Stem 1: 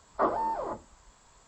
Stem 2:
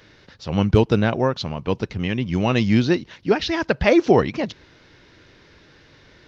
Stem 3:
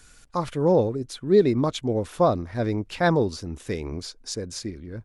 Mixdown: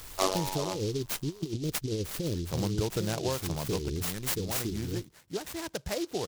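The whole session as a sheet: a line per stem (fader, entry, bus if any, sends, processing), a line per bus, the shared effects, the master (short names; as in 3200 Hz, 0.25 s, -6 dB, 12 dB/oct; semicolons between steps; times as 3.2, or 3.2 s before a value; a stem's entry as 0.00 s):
+2.5 dB, 0.00 s, no bus, no send, robotiser 94.5 Hz
3.68 s -1 dB -> 4.28 s -13.5 dB, 2.05 s, bus A, no send, high shelf 4700 Hz -5 dB
+2.0 dB, 0.00 s, bus A, no send, elliptic band-stop 430–3000 Hz; high shelf 8500 Hz +7.5 dB; negative-ratio compressor -27 dBFS, ratio -0.5
bus A: 0.0 dB, bell 240 Hz -9.5 dB 0.26 oct; compressor 3:1, threshold -30 dBFS, peak gain reduction 13.5 dB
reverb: off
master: soft clip -12.5 dBFS, distortion -23 dB; high shelf 9900 Hz +8 dB; noise-modulated delay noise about 4400 Hz, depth 0.099 ms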